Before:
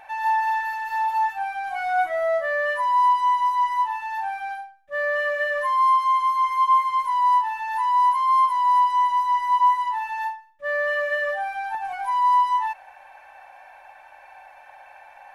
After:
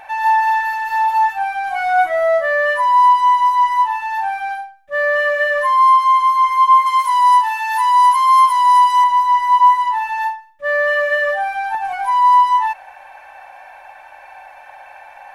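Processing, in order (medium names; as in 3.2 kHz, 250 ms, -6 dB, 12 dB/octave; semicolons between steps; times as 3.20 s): 6.86–9.04 s: tilt EQ +3 dB/octave; trim +7.5 dB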